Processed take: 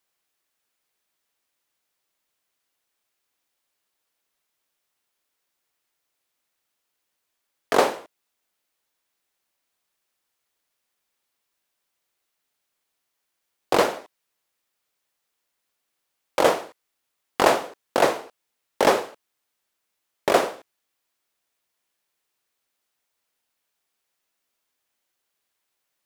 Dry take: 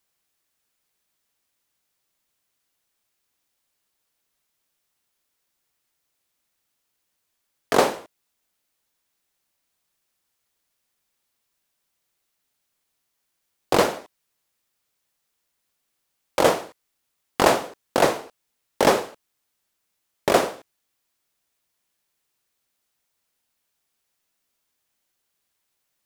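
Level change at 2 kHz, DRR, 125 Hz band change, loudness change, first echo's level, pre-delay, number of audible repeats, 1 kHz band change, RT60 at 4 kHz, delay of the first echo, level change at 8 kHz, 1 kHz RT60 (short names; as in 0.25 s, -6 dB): 0.0 dB, none, -6.0 dB, -0.5 dB, none, none, none, 0.0 dB, none, none, -3.0 dB, none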